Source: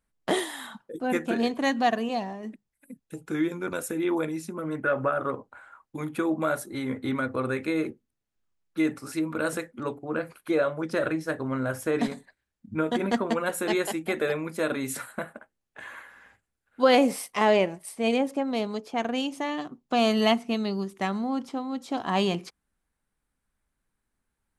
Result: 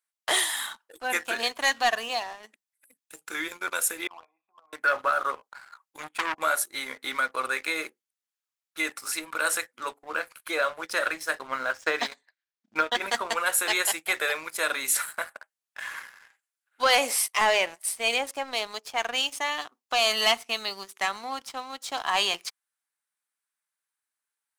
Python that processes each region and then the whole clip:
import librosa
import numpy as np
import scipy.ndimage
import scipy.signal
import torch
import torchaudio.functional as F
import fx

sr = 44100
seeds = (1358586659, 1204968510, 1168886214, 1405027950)

y = fx.chain(x, sr, fx.formant_cascade(vowel='a'),
    fx.peak_eq(hz=3100.0, db=9.5, octaves=0.98), at=(4.07, 4.73))
y = fx.chain(y, sr, fx.lowpass(hz=9200.0, slope=24),
    fx.transient(attack_db=5, sustain_db=-7),
    fx.transformer_sat(knee_hz=1900.0), at=(5.98, 6.38))
y = fx.chain(y, sr, fx.lowpass(hz=6000.0, slope=24),
    fx.transient(attack_db=7, sustain_db=-4), at=(11.47, 13.02))
y = scipy.signal.sosfilt(scipy.signal.butter(2, 1000.0, 'highpass', fs=sr, output='sos'), y)
y = fx.high_shelf(y, sr, hz=3600.0, db=6.5)
y = fx.leveller(y, sr, passes=2)
y = y * librosa.db_to_amplitude(-1.5)